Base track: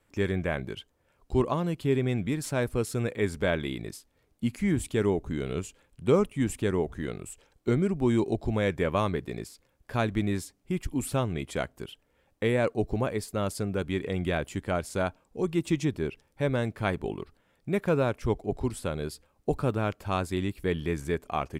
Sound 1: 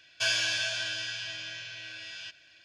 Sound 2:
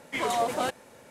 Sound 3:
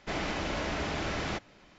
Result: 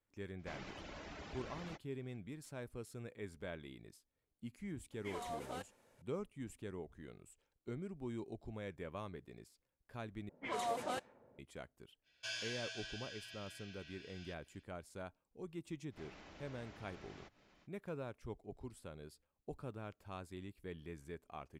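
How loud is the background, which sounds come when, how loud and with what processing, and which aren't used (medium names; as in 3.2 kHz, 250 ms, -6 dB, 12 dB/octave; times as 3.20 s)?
base track -19.5 dB
0.39 s: add 3 -15.5 dB + reverb removal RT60 0.72 s
4.92 s: add 2 -18 dB
10.29 s: replace with 2 -11.5 dB + level-controlled noise filter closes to 480 Hz, open at -23 dBFS
12.03 s: add 1 -16 dB, fades 0.05 s
15.90 s: add 3 -10.5 dB, fades 0.05 s + compression 2:1, threshold -54 dBFS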